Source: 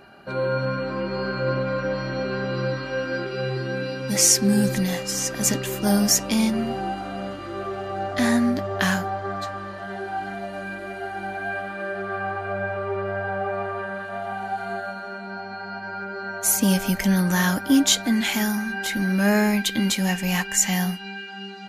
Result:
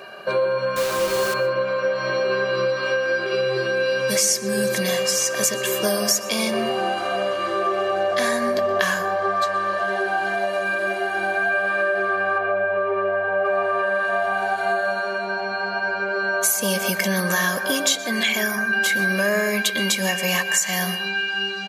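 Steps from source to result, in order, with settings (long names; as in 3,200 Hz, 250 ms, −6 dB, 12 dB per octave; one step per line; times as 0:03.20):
0:18.23–0:18.73: spectral envelope exaggerated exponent 1.5
high-pass filter 290 Hz 12 dB per octave
comb filter 1.8 ms, depth 76%
downward compressor 5 to 1, threshold −28 dBFS, peak gain reduction 15.5 dB
0:00.76–0:01.34: bit-depth reduction 6 bits, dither none
0:12.38–0:13.45: high-frequency loss of the air 240 metres
dense smooth reverb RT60 0.72 s, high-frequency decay 0.25×, pre-delay 110 ms, DRR 11.5 dB
level +9 dB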